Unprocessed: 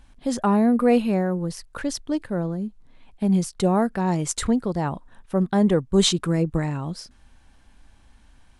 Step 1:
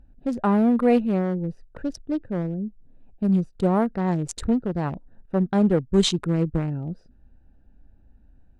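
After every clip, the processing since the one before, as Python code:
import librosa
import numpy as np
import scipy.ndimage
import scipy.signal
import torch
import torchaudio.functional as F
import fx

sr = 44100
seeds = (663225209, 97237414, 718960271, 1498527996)

y = fx.wiener(x, sr, points=41)
y = fx.high_shelf(y, sr, hz=7500.0, db=-9.5)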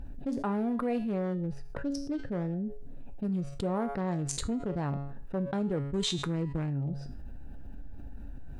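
y = fx.comb_fb(x, sr, f0_hz=140.0, decay_s=0.41, harmonics='all', damping=0.0, mix_pct=70)
y = fx.env_flatten(y, sr, amount_pct=70)
y = y * 10.0 ** (-5.0 / 20.0)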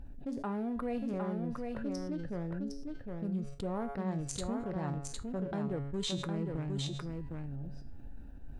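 y = x + 10.0 ** (-4.0 / 20.0) * np.pad(x, (int(759 * sr / 1000.0), 0))[:len(x)]
y = y * 10.0 ** (-5.5 / 20.0)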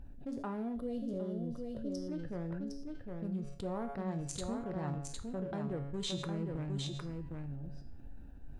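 y = fx.spec_box(x, sr, start_s=0.75, length_s=1.33, low_hz=690.0, high_hz=2800.0, gain_db=-15)
y = fx.rev_gated(y, sr, seeds[0], gate_ms=220, shape='falling', drr_db=11.5)
y = y * 10.0 ** (-2.5 / 20.0)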